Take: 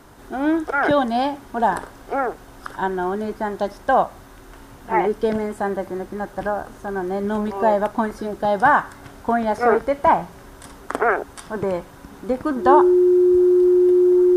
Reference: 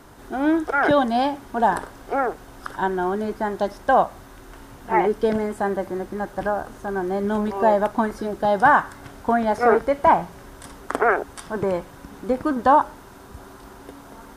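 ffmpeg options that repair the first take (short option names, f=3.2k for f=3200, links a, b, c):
-af "bandreject=f=360:w=30"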